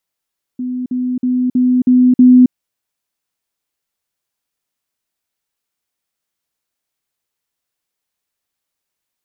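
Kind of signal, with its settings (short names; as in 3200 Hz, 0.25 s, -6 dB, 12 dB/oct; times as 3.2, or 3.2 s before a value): level ladder 251 Hz -18 dBFS, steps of 3 dB, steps 6, 0.27 s 0.05 s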